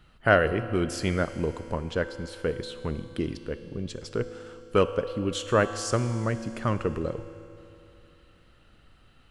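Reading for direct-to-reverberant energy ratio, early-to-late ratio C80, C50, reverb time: 10.0 dB, 12.0 dB, 11.0 dB, 2.9 s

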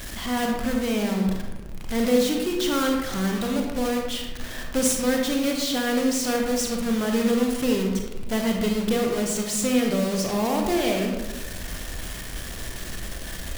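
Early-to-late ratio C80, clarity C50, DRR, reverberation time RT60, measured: 5.0 dB, 3.0 dB, 1.0 dB, 1.1 s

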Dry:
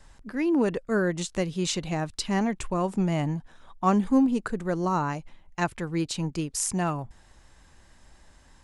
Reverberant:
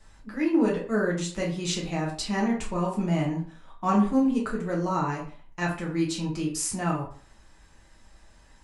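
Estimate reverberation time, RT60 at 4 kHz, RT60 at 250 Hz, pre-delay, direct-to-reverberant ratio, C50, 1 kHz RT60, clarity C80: 0.45 s, 0.30 s, 0.45 s, 5 ms, −4.0 dB, 7.0 dB, 0.50 s, 11.5 dB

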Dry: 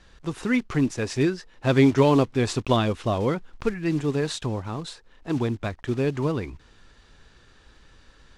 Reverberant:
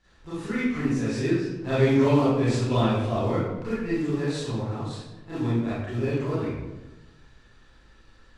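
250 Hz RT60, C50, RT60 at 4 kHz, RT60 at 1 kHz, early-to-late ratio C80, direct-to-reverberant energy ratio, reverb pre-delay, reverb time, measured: 1.3 s, −3.0 dB, 0.65 s, 1.0 s, 1.5 dB, −12.5 dB, 27 ms, 1.1 s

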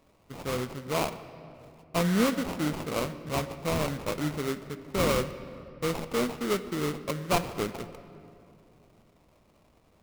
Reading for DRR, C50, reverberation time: 11.0 dB, 12.5 dB, 2.5 s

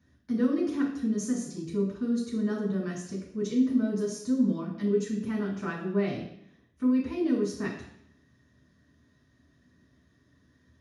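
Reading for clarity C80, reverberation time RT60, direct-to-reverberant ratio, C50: 8.5 dB, 0.70 s, −5.5 dB, 5.0 dB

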